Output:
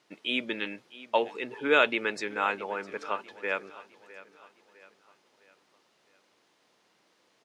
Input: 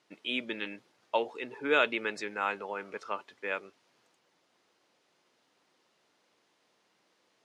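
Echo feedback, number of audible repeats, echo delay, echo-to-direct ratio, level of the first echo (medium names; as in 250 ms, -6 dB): 45%, 3, 657 ms, -17.0 dB, -18.0 dB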